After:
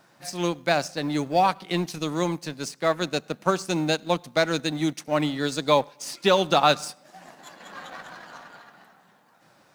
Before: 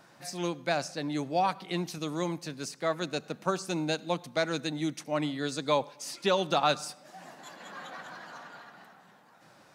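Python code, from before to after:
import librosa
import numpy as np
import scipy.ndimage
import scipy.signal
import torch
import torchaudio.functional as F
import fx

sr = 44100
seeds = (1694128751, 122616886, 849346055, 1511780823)

y = fx.law_mismatch(x, sr, coded='A')
y = y * librosa.db_to_amplitude(7.5)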